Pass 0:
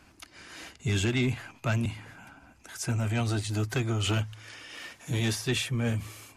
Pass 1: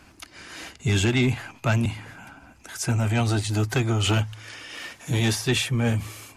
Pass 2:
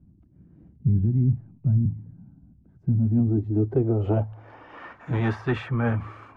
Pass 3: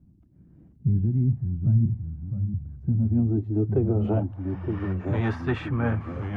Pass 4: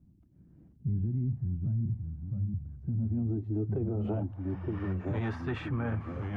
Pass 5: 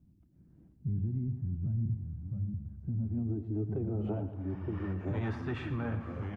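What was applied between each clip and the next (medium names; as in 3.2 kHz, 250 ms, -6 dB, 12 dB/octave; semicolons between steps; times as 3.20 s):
dynamic bell 830 Hz, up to +5 dB, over -56 dBFS, Q 5.5; trim +5.5 dB
low-pass sweep 170 Hz -> 1.3 kHz, 2.76–5.00 s; trim -1.5 dB
ever faster or slower copies 457 ms, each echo -2 st, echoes 3, each echo -6 dB; trim -1.5 dB
peak limiter -20 dBFS, peak gain reduction 8.5 dB; trim -4.5 dB
feedback delay 115 ms, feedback 54%, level -12 dB; trim -2.5 dB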